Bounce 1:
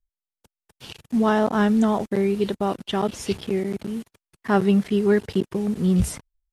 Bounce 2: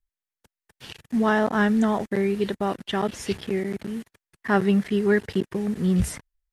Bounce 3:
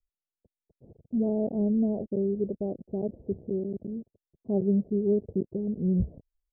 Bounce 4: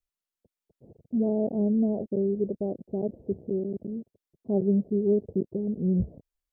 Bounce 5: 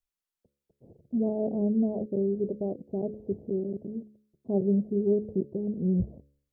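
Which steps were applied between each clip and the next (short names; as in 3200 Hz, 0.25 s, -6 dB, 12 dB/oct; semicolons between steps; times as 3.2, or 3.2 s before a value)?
bell 1800 Hz +7.5 dB 0.56 oct; gain -2 dB
steep low-pass 630 Hz 48 dB/oct; gain -4 dB
low shelf 73 Hz -10 dB; gain +2 dB
de-hum 70.82 Hz, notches 8; gain -1 dB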